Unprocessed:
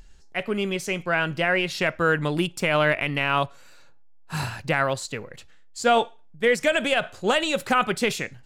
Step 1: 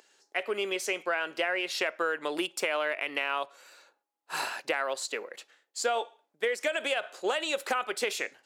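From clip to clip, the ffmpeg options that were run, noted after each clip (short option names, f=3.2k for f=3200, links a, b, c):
-af "highpass=f=360:w=0.5412,highpass=f=360:w=1.3066,acompressor=threshold=-26dB:ratio=6"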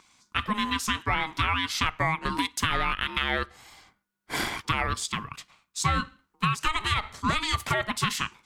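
-af "aeval=exprs='val(0)*sin(2*PI*630*n/s)':c=same,volume=6.5dB"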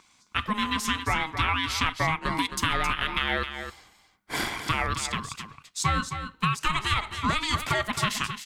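-af "aecho=1:1:266:0.355"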